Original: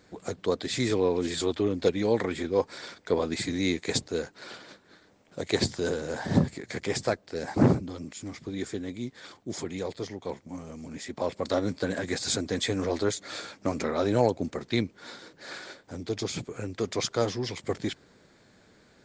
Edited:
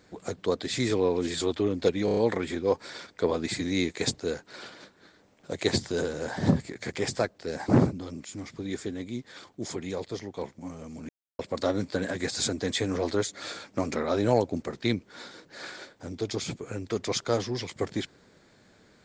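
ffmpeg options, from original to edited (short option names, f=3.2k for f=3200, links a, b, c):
-filter_complex "[0:a]asplit=7[a][b][c][d][e][f][g];[a]atrim=end=2.082[h];[b]atrim=start=2.048:end=2.082[i];[c]atrim=start=2.048:end=2.082[j];[d]atrim=start=2.048:end=2.082[k];[e]atrim=start=2.048:end=10.97,asetpts=PTS-STARTPTS,afade=t=out:st=8.918:d=0.004:c=hsin[l];[f]atrim=start=10.97:end=11.27,asetpts=PTS-STARTPTS,volume=0[m];[g]atrim=start=11.27,asetpts=PTS-STARTPTS,afade=t=in:d=0.004:c=hsin[n];[h][i]acrossfade=d=0.004:c1=hsin:c2=hsin[o];[o][j]acrossfade=d=0.004:c1=hsin:c2=hsin[p];[p][k]acrossfade=d=0.004:c1=hsin:c2=hsin[q];[l][m][n]concat=n=3:v=0:a=1[r];[q][r]acrossfade=d=0.004:c1=hsin:c2=hsin"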